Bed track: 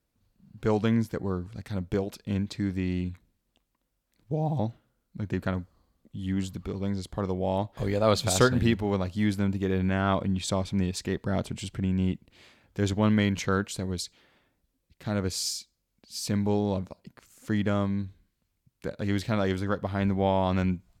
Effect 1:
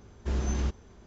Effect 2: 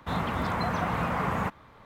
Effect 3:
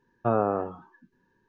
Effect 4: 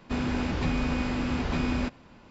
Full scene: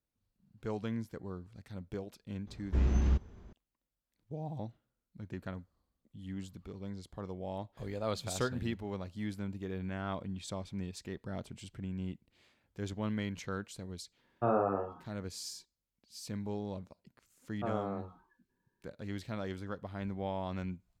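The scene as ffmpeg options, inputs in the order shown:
ffmpeg -i bed.wav -i cue0.wav -i cue1.wav -i cue2.wav -filter_complex "[3:a]asplit=2[link_01][link_02];[0:a]volume=-12.5dB[link_03];[1:a]bass=frequency=250:gain=6,treble=frequency=4000:gain=-8[link_04];[link_01]asplit=2[link_05][link_06];[link_06]adelay=41,volume=-3.5dB[link_07];[link_05][link_07]amix=inputs=2:normalize=0[link_08];[link_04]atrim=end=1.06,asetpts=PTS-STARTPTS,volume=-4.5dB,afade=type=in:duration=0.004:curve=hsin,afade=type=out:start_time=1.056:duration=0.004:curve=hsin,adelay=2470[link_09];[link_08]atrim=end=1.48,asetpts=PTS-STARTPTS,volume=-6.5dB,afade=type=in:duration=0.004:curve=hsin,afade=type=out:start_time=1.476:duration=0.004:curve=hsin,adelay=14170[link_10];[link_02]atrim=end=1.48,asetpts=PTS-STARTPTS,volume=-12.5dB,afade=type=in:duration=0.004:curve=hsin,afade=type=out:start_time=1.476:duration=0.004:curve=hsin,adelay=17370[link_11];[link_03][link_09][link_10][link_11]amix=inputs=4:normalize=0" out.wav

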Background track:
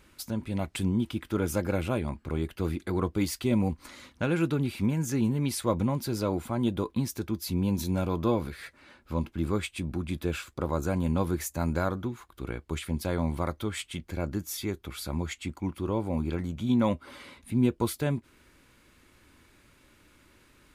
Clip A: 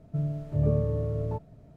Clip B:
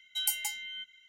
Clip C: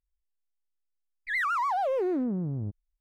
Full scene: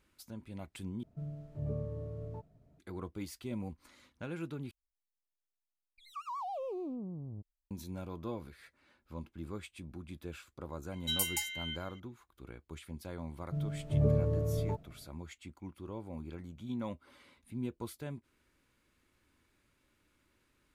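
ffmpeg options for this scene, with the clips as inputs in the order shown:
ffmpeg -i bed.wav -i cue0.wav -i cue1.wav -i cue2.wav -filter_complex "[1:a]asplit=2[link_01][link_02];[0:a]volume=-14dB[link_03];[3:a]asuperstop=centerf=1700:order=12:qfactor=1.5[link_04];[2:a]alimiter=limit=-17.5dB:level=0:latency=1:release=35[link_05];[link_02]dynaudnorm=framelen=150:gausssize=5:maxgain=4.5dB[link_06];[link_03]asplit=3[link_07][link_08][link_09];[link_07]atrim=end=1.034[link_10];[link_01]atrim=end=1.76,asetpts=PTS-STARTPTS,volume=-12.5dB[link_11];[link_08]atrim=start=2.786:end=4.714[link_12];[link_04]atrim=end=3,asetpts=PTS-STARTPTS,volume=-11.5dB[link_13];[link_09]atrim=start=7.706[link_14];[link_05]atrim=end=1.08,asetpts=PTS-STARTPTS,volume=-0.5dB,afade=type=in:duration=0.004:curve=hsin,afade=type=out:start_time=1.076:duration=0.004:curve=hsin,adelay=10920[link_15];[link_06]atrim=end=1.76,asetpts=PTS-STARTPTS,volume=-7.5dB,afade=type=in:duration=0.004:curve=hsin,afade=type=out:start_time=1.756:duration=0.004:curve=hsin,adelay=13380[link_16];[link_10][link_11]acrossfade=duration=0.004:curve1=hsin:curve2=hsin[link_17];[link_17][link_12]acrossfade=duration=0.004:curve1=hsin:curve2=hsin[link_18];[link_18][link_13]acrossfade=duration=0.004:curve1=hsin:curve2=hsin[link_19];[link_19][link_14]acrossfade=duration=0.004:curve1=hsin:curve2=hsin[link_20];[link_20][link_15][link_16]amix=inputs=3:normalize=0" out.wav

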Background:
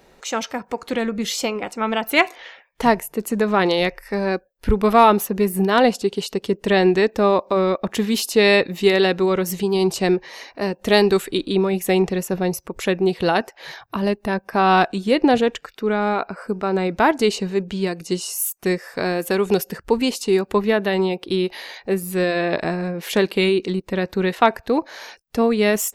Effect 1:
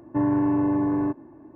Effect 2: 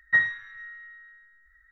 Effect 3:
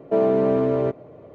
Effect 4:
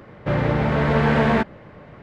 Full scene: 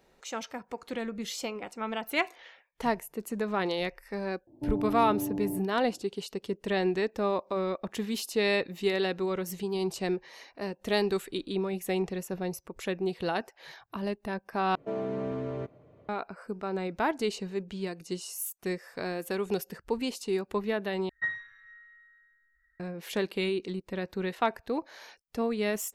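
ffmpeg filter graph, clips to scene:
ffmpeg -i bed.wav -i cue0.wav -i cue1.wav -i cue2.wav -filter_complex "[0:a]volume=-12dB[link_01];[1:a]asuperstop=centerf=1600:order=8:qfactor=0.71[link_02];[3:a]equalizer=frequency=500:width=0.44:gain=-8.5[link_03];[link_01]asplit=3[link_04][link_05][link_06];[link_04]atrim=end=14.754[link_07];[link_03]atrim=end=1.34,asetpts=PTS-STARTPTS,volume=-6.5dB[link_08];[link_05]atrim=start=16.086:end=21.094[link_09];[2:a]atrim=end=1.71,asetpts=PTS-STARTPTS,volume=-10.5dB[link_10];[link_06]atrim=start=22.796[link_11];[link_02]atrim=end=1.55,asetpts=PTS-STARTPTS,volume=-10dB,afade=type=in:duration=0.004:curve=hsin,afade=type=out:start_time=1.546:duration=0.004:curve=hsin,adelay=4470[link_12];[link_07][link_08]acrossfade=duration=0.004:curve1=hsin:curve2=hsin[link_13];[link_13][link_09]acrossfade=duration=0.004:curve1=hsin:curve2=hsin[link_14];[link_14][link_10]acrossfade=duration=0.004:curve1=hsin:curve2=hsin[link_15];[link_15][link_11]acrossfade=duration=0.004:curve1=hsin:curve2=hsin[link_16];[link_16][link_12]amix=inputs=2:normalize=0" out.wav

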